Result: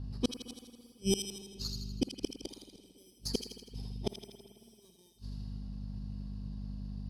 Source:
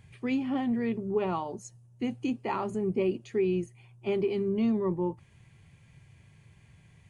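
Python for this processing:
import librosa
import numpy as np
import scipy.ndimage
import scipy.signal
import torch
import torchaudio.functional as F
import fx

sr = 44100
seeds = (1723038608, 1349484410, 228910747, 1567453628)

p1 = fx.bit_reversed(x, sr, seeds[0], block=16)
p2 = fx.env_lowpass(p1, sr, base_hz=1500.0, full_db=-25.5)
p3 = fx.high_shelf_res(p2, sr, hz=3100.0, db=13.0, q=3.0)
p4 = fx.add_hum(p3, sr, base_hz=50, snr_db=16)
p5 = fx.gate_flip(p4, sr, shuts_db=-22.0, range_db=-42)
p6 = p5 + fx.echo_wet_highpass(p5, sr, ms=81, feedback_pct=55, hz=2400.0, wet_db=-4, dry=0)
p7 = fx.rev_spring(p6, sr, rt60_s=2.3, pass_ms=(55,), chirp_ms=30, drr_db=11.0)
y = p7 * librosa.db_to_amplitude(5.0)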